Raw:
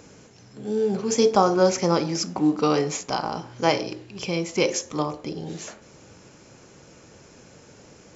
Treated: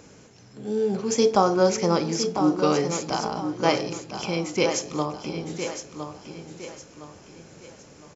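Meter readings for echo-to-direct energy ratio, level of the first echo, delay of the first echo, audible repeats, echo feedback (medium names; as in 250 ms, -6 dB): -8.0 dB, -8.5 dB, 1011 ms, 3, 36%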